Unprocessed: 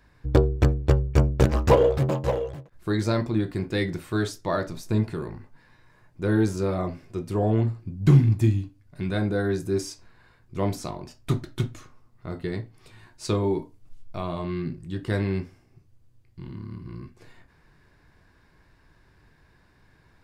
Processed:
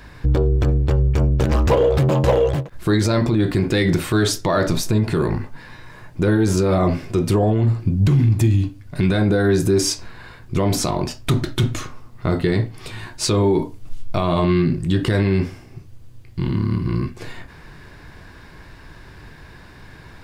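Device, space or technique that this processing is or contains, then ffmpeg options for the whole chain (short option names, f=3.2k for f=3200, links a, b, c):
mastering chain: -af "equalizer=f=3.2k:t=o:w=0.77:g=2.5,acompressor=threshold=-25dB:ratio=3,asoftclip=type=tanh:threshold=-13dB,alimiter=level_in=25.5dB:limit=-1dB:release=50:level=0:latency=1,volume=-8.5dB"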